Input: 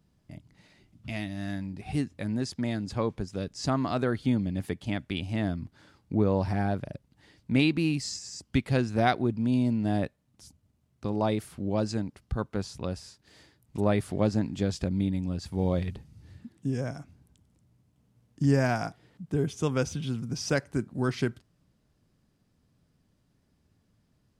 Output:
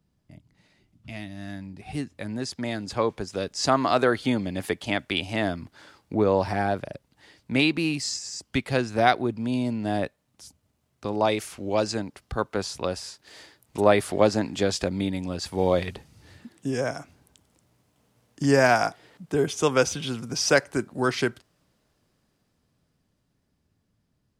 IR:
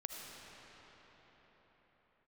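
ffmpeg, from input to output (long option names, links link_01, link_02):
-filter_complex "[0:a]asettb=1/sr,asplit=3[link_01][link_02][link_03];[link_01]atrim=end=11.254[link_04];[link_02]atrim=start=11.25:end=11.87,asetpts=PTS-STARTPTS,afade=type=in:duration=0.004:curve=qsin,afade=type=out:start_time=0.616:duration=0.004:curve=qsin,equalizer=frequency=160:width_type=o:width=0.67:gain=-5,equalizer=frequency=2500:width_type=o:width=0.67:gain=5,equalizer=frequency=6300:width_type=o:width=0.67:gain=7[link_05];[link_03]atrim=start=11.866[link_06];[link_04][link_05]acrossfade=duration=0.004:curve1=hsin:curve2=qsin[link_07];[link_07][link_06]acrossfade=duration=0.004:curve1=qsin:curve2=hsin,acrossover=split=360[link_08][link_09];[link_09]dynaudnorm=framelen=280:gausssize=21:maxgain=16.5dB[link_10];[link_08][link_10]amix=inputs=2:normalize=0,volume=-3.5dB"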